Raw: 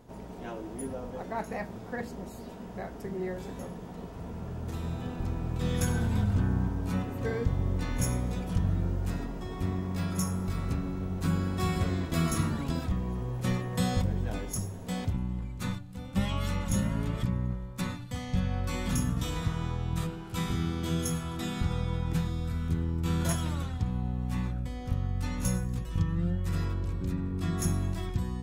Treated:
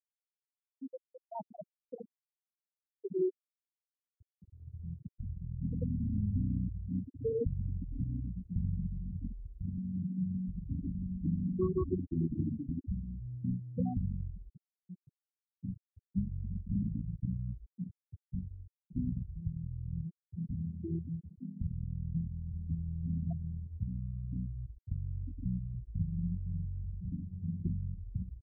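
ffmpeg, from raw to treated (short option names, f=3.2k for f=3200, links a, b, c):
-filter_complex "[0:a]asplit=3[a][b][c];[a]afade=t=out:st=8.76:d=0.02[d];[b]aecho=1:1:167:0.562,afade=t=in:st=8.76:d=0.02,afade=t=out:st=11.97:d=0.02[e];[c]afade=t=in:st=11.97:d=0.02[f];[d][e][f]amix=inputs=3:normalize=0,asettb=1/sr,asplit=3[g][h][i];[g]atrim=end=14.574[j];[h]atrim=start=14.57:end=15.63,asetpts=PTS-STARTPTS,afade=t=in:d=0.004:c=qsin,afade=t=out:st=1.056:d=0.004:c=qsin,highpass=220[k];[i]atrim=start=15.626[l];[j][k]acrossfade=d=0.004:c1=hsin:c2=qsin[m];[m][l]acrossfade=d=0.004:c1=qsin:c2=hsin,asplit=2[n][o];[n]atrim=end=18.96,asetpts=PTS-STARTPTS,afade=t=out:st=17.65:d=1.31:silence=0.375837[p];[o]atrim=start=18.96,asetpts=PTS-STARTPTS,afade=t=in:d=0.004:c=hsin:silence=0.375837[q];[p][q]concat=n=2:v=0:a=1,afftfilt=real='re*gte(hypot(re,im),0.158)':imag='im*gte(hypot(re,im),0.158)':win_size=1024:overlap=0.75,equalizer=f=360:t=o:w=1.1:g=12.5,volume=-7dB"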